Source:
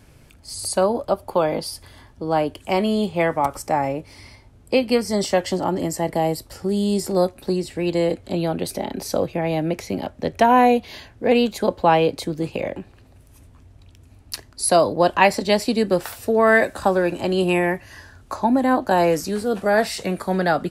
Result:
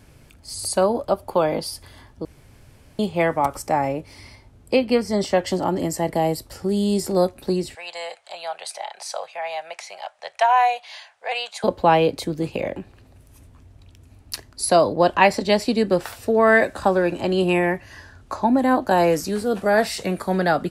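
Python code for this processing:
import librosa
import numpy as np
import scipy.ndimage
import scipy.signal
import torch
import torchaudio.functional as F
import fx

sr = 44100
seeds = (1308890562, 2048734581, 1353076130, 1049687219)

y = fx.high_shelf(x, sr, hz=5800.0, db=-9.5, at=(4.76, 5.47))
y = fx.ellip_bandpass(y, sr, low_hz=720.0, high_hz=9400.0, order=3, stop_db=40, at=(7.75, 11.64))
y = fx.high_shelf(y, sr, hz=11000.0, db=-10.5, at=(14.65, 18.59))
y = fx.edit(y, sr, fx.room_tone_fill(start_s=2.25, length_s=0.74), tone=tone)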